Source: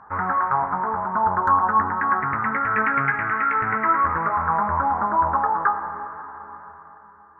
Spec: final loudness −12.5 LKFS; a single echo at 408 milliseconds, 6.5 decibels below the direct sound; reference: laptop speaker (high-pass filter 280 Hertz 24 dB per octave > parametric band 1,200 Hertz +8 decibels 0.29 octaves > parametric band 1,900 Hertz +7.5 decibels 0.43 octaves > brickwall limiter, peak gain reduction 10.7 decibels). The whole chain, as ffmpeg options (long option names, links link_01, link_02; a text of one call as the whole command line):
ffmpeg -i in.wav -af "highpass=frequency=280:width=0.5412,highpass=frequency=280:width=1.3066,equalizer=frequency=1200:width_type=o:width=0.29:gain=8,equalizer=frequency=1900:width_type=o:width=0.43:gain=7.5,aecho=1:1:408:0.473,volume=7.5dB,alimiter=limit=-4.5dB:level=0:latency=1" out.wav